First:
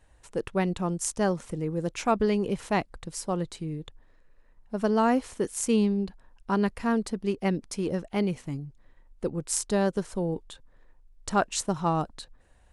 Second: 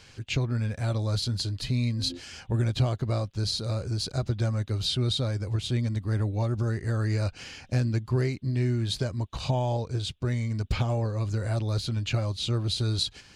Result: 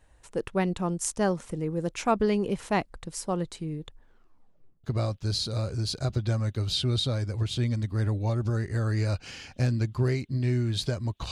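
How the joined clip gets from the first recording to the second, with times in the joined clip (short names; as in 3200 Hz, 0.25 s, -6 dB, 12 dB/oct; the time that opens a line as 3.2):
first
3.99 tape stop 0.85 s
4.84 switch to second from 2.97 s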